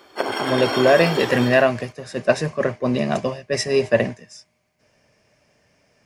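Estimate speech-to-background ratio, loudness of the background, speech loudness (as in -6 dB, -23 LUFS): 4.5 dB, -25.0 LUFS, -20.5 LUFS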